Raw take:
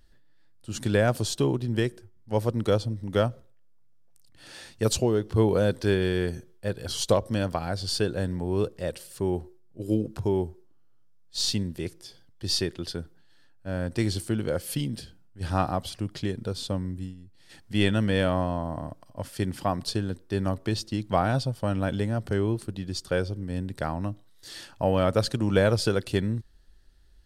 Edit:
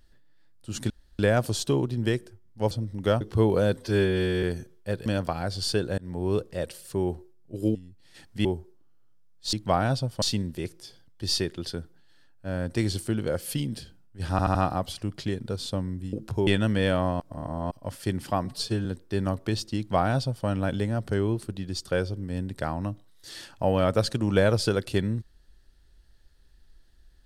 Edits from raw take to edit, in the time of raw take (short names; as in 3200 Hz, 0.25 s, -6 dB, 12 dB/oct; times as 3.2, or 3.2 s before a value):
0.9 insert room tone 0.29 s
2.42–2.8 cut
3.3–5.2 cut
5.76–6.2 stretch 1.5×
6.83–7.32 cut
8.24–8.54 fade in equal-power
10.01–10.35 swap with 17.1–17.8
15.52 stutter 0.08 s, 4 plays
18.53–19.04 reverse
19.78–20.05 stretch 1.5×
20.97–21.66 copy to 11.43